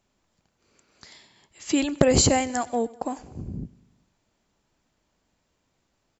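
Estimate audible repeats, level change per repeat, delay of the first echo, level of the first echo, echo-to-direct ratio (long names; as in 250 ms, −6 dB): 3, −4.5 dB, 97 ms, −22.0 dB, −20.0 dB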